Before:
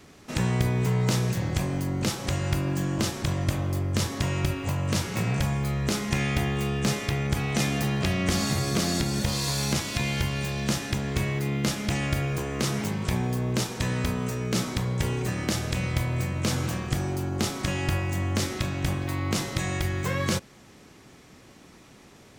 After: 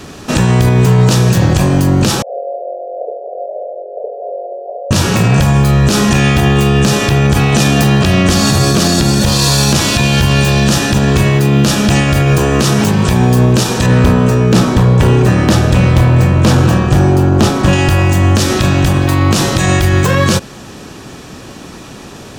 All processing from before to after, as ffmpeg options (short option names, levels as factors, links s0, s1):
-filter_complex "[0:a]asettb=1/sr,asplit=3[s0][s1][s2];[s0]atrim=end=2.224[s3];[s1]atrim=start=2.22:end=4.91,asetpts=PTS-STARTPTS,afade=t=in:d=0.004:c=qsin,afade=t=out:st=2.686:d=0.004:c=qsin,asuperpass=centerf=560:order=12:qfactor=1.9,acrossover=split=570[s4][s5];[s4]adelay=70[s6];[s6][s5]amix=inputs=2:normalize=0,atrim=end_sample=118629[s7];[s2]atrim=start=4.906[s8];[s3][s7]acrossfade=d=0.004:c1=hsin:c2=qsin[s9];[s9][s8]acrossfade=d=0.004:c1=qsin:c2=hsin,asettb=1/sr,asplit=3[s10][s11][s12];[s10]atrim=end=13.864[s13];[s11]atrim=start=13.86:end=17.73,asetpts=PTS-STARTPTS,afade=t=in:d=0.004:c=qsin,afade=t=out:st=3.866:d=0.004:c=qsin,highshelf=f=2900:g=-10,asoftclip=type=hard:threshold=0.0631[s14];[s12]atrim=start=17.726[s15];[s13][s14]acrossfade=d=0.004:c1=hsin:c2=qsin[s16];[s16][s15]acrossfade=d=0.004:c1=qsin:c2=hsin,highshelf=f=11000:g=-4,bandreject=f=2100:w=6.3,alimiter=level_in=11.9:limit=0.891:release=50:level=0:latency=1,volume=0.891"